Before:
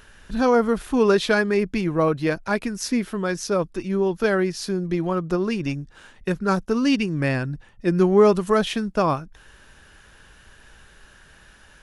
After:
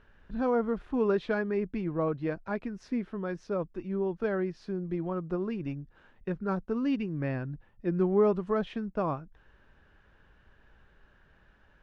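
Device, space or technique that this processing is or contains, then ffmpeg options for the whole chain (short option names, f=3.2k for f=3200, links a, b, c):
phone in a pocket: -af "lowpass=3.6k,highshelf=f=2k:g=-11.5,volume=-8.5dB"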